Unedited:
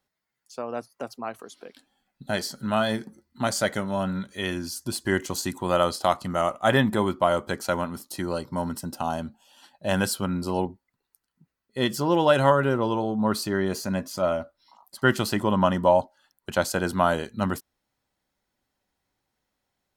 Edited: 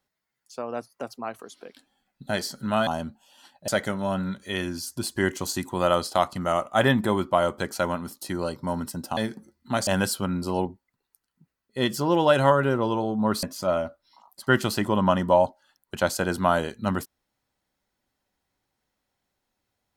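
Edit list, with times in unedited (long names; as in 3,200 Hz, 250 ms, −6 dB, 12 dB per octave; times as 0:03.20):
0:02.87–0:03.57: swap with 0:09.06–0:09.87
0:13.43–0:13.98: remove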